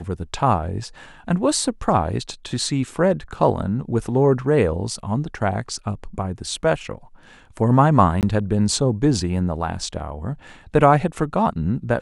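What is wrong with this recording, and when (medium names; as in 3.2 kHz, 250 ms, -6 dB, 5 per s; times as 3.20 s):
8.21–8.23 s: dropout 18 ms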